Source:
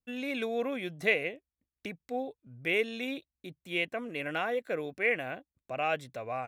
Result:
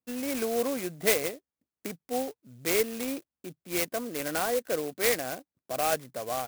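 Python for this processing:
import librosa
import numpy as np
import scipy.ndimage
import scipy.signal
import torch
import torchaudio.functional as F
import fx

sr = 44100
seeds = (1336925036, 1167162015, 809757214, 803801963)

y = scipy.signal.sosfilt(scipy.signal.butter(2, 160.0, 'highpass', fs=sr, output='sos'), x)
y = fx.high_shelf(y, sr, hz=4300.0, db=-11.5)
y = fx.clock_jitter(y, sr, seeds[0], jitter_ms=0.085)
y = F.gain(torch.from_numpy(y), 4.0).numpy()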